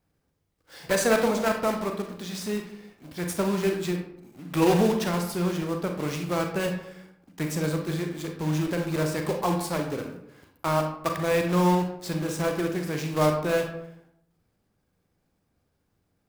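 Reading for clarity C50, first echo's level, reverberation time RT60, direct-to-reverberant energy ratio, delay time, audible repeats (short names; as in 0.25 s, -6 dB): 6.5 dB, none, 0.75 s, 3.5 dB, none, none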